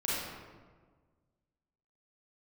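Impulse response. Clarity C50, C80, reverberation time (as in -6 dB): -3.5 dB, 0.0 dB, 1.5 s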